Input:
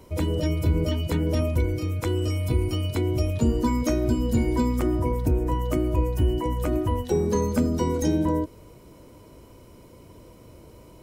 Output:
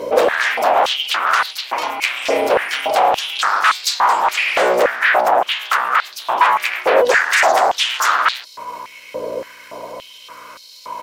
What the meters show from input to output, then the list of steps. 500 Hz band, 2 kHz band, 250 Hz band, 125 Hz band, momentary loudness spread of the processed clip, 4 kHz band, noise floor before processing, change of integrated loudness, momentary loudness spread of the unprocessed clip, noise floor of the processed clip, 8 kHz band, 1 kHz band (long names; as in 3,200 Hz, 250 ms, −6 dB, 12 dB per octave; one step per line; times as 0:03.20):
+9.5 dB, +25.5 dB, −10.5 dB, below −25 dB, 18 LU, +19.0 dB, −49 dBFS, +9.0 dB, 3 LU, −41 dBFS, +12.5 dB, +20.0 dB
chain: high shelf with overshoot 6,600 Hz −6.5 dB, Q 1.5
comb filter 1.9 ms, depth 60%
mains hum 60 Hz, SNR 15 dB
sine wavefolder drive 18 dB, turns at −8.5 dBFS
brickwall limiter −11.5 dBFS, peak gain reduction 3.5 dB
high-pass on a step sequencer 3.5 Hz 530–4,200 Hz
level −2.5 dB